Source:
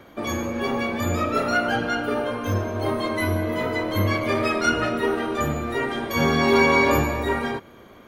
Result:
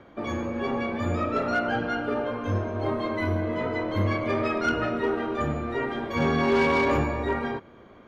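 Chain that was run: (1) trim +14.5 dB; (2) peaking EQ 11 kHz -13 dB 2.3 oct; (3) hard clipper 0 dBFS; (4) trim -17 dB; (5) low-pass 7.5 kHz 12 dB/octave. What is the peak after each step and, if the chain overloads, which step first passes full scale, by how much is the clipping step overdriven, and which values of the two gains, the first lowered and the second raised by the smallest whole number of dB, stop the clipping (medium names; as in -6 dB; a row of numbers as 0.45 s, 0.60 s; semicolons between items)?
+8.0 dBFS, +7.5 dBFS, 0.0 dBFS, -17.0 dBFS, -16.5 dBFS; step 1, 7.5 dB; step 1 +6.5 dB, step 4 -9 dB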